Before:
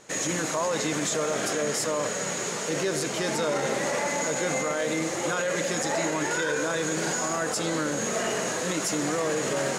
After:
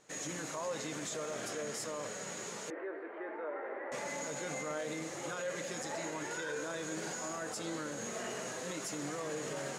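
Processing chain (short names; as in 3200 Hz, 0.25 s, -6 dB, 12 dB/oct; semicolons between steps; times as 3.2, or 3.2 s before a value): flange 0.21 Hz, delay 6.5 ms, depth 3.2 ms, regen +77%; 2.7–3.92 elliptic band-pass 330–1900 Hz, stop band 50 dB; gain -8 dB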